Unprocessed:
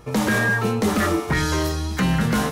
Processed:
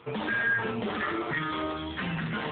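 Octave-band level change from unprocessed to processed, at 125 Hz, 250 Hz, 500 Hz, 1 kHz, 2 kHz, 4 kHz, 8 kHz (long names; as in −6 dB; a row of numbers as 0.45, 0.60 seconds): −14.5 dB, −12.0 dB, −9.5 dB, −7.5 dB, −5.0 dB, −8.5 dB, below −40 dB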